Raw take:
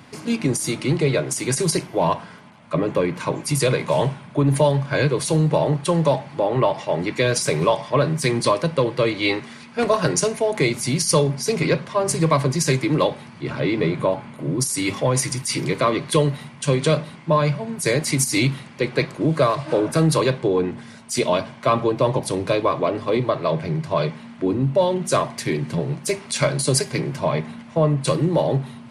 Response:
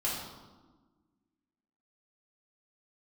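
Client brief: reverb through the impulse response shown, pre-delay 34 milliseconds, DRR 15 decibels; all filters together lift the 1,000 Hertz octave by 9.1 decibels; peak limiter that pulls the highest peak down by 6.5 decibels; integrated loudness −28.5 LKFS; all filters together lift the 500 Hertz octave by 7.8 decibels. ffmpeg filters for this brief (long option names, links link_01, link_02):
-filter_complex "[0:a]equalizer=frequency=500:width_type=o:gain=7,equalizer=frequency=1000:width_type=o:gain=8.5,alimiter=limit=-4dB:level=0:latency=1,asplit=2[link_01][link_02];[1:a]atrim=start_sample=2205,adelay=34[link_03];[link_02][link_03]afir=irnorm=-1:irlink=0,volume=-21dB[link_04];[link_01][link_04]amix=inputs=2:normalize=0,volume=-11.5dB"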